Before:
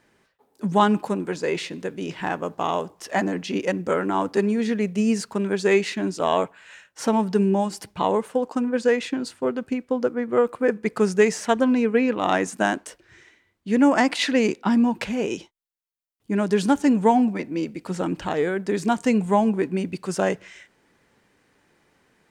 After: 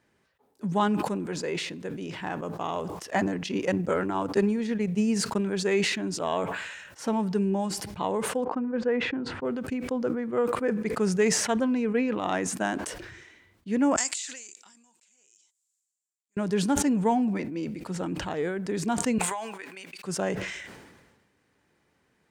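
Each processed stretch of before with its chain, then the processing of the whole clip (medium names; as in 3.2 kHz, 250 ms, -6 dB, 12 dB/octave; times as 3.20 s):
2.75–5.47 s: transient shaper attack +5 dB, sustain -11 dB + short-mantissa float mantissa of 8-bit
8.44–9.45 s: low-pass 1.7 kHz + band-stop 610 Hz, Q 17
13.96–16.37 s: band-pass filter 7.4 kHz, Q 7.3 + transient shaper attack -11 dB, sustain -5 dB
19.18–20.04 s: high-pass 1.2 kHz + transient shaper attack +8 dB, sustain -1 dB + compression 3:1, threshold -30 dBFS
whole clip: high-pass 63 Hz; bass shelf 93 Hz +10 dB; decay stretcher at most 42 dB/s; trim -7.5 dB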